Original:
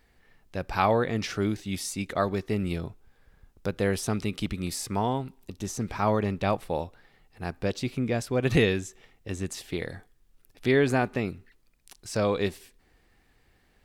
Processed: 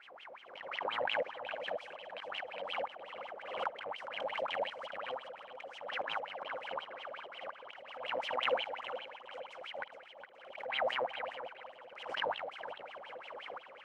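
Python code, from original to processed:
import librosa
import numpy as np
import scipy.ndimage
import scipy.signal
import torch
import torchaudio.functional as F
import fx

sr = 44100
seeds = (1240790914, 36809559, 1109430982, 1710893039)

y = fx.bin_compress(x, sr, power=0.4)
y = fx.high_shelf(y, sr, hz=8400.0, db=-6.5)
y = fx.auto_swell(y, sr, attack_ms=113.0)
y = fx.level_steps(y, sr, step_db=12)
y = y * np.sin(2.0 * np.pi * 380.0 * np.arange(len(y)) / sr)
y = fx.wow_flutter(y, sr, seeds[0], rate_hz=2.1, depth_cents=24.0)
y = fx.wah_lfo(y, sr, hz=5.6, low_hz=500.0, high_hz=3200.0, q=16.0)
y = fx.tremolo_shape(y, sr, shape='saw_up', hz=0.81, depth_pct=70)
y = fx.echo_feedback(y, sr, ms=414, feedback_pct=33, wet_db=-10.0)
y = fx.pre_swell(y, sr, db_per_s=61.0)
y = F.gain(torch.from_numpy(y), 8.5).numpy()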